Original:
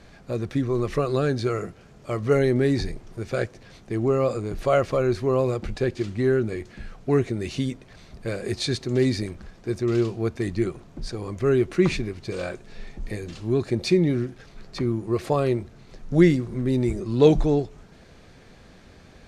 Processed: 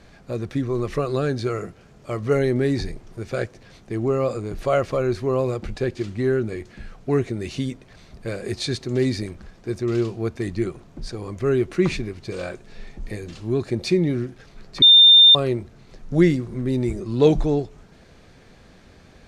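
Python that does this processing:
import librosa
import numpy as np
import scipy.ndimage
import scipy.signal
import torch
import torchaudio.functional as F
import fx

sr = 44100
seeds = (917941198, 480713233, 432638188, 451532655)

y = fx.edit(x, sr, fx.bleep(start_s=14.82, length_s=0.53, hz=3610.0, db=-7.0), tone=tone)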